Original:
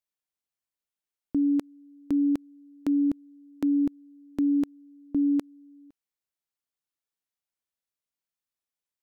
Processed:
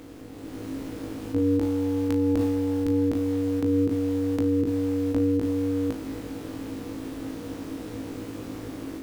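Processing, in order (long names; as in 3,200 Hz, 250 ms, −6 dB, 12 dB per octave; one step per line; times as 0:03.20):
compressor on every frequency bin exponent 0.2
0:01.59–0:03.03: transient designer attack −8 dB, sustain +12 dB
amplitude modulation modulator 190 Hz, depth 60%
automatic gain control gain up to 8 dB
on a send: flutter between parallel walls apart 3.2 metres, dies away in 0.25 s
on the sum: brickwall limiter −16.5 dBFS, peak gain reduction 8.5 dB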